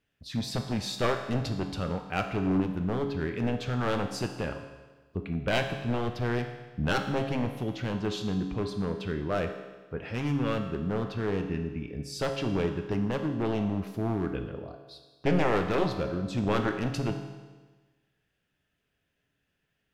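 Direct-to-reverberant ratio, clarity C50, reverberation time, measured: 4.5 dB, 7.5 dB, 1.3 s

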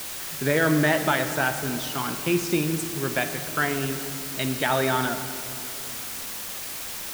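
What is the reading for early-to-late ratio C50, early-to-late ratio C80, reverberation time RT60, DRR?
9.0 dB, 10.0 dB, 2.6 s, 8.5 dB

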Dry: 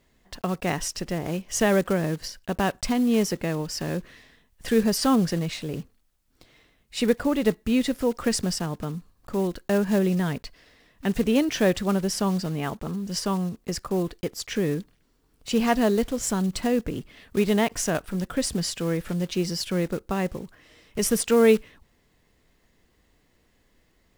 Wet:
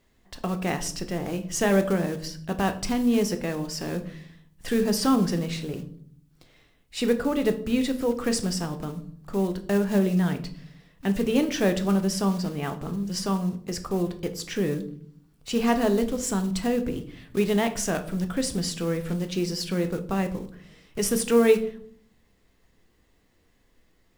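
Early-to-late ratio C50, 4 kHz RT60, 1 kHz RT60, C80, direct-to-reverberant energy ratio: 13.5 dB, 0.40 s, 0.50 s, 17.5 dB, 7.0 dB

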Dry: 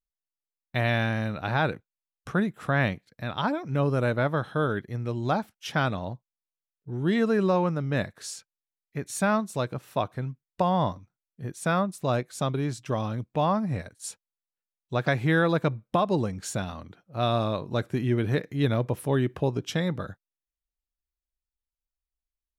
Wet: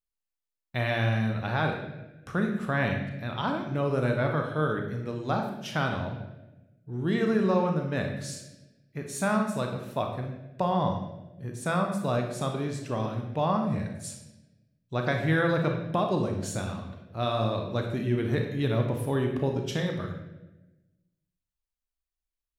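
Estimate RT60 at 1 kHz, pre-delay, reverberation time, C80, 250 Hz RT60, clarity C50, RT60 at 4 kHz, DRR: 0.85 s, 32 ms, 1.0 s, 7.5 dB, 1.5 s, 4.5 dB, 0.85 s, 2.5 dB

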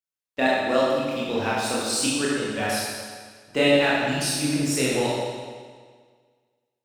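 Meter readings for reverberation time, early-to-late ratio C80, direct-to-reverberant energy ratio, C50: 1.7 s, 0.0 dB, −7.0 dB, −2.0 dB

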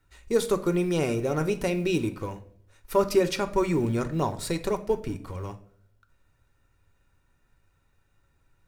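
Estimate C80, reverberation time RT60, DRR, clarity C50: 19.0 dB, 0.65 s, 8.0 dB, 15.0 dB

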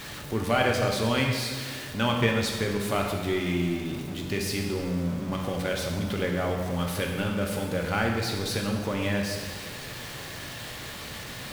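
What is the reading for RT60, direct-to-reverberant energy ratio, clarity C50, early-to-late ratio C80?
1.6 s, 0.5 dB, 3.0 dB, 4.5 dB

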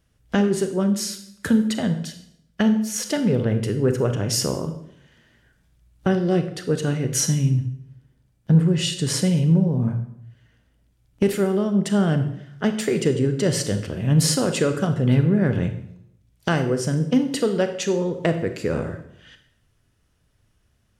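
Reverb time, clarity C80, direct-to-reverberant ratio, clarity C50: 0.70 s, 12.5 dB, 7.5 dB, 10.0 dB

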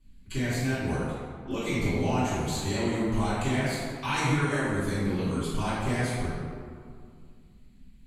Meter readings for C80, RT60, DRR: −0.5 dB, 2.2 s, −15.0 dB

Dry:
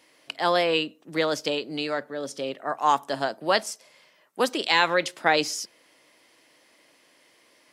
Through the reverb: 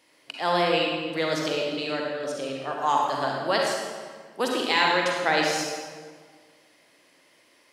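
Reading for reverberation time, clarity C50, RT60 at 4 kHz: 1.7 s, −0.5 dB, 1.2 s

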